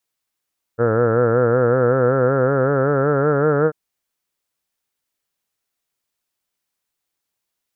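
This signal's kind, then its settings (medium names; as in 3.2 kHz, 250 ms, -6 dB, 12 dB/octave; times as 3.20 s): formant-synthesis vowel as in heard, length 2.94 s, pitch 113 Hz, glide +5 st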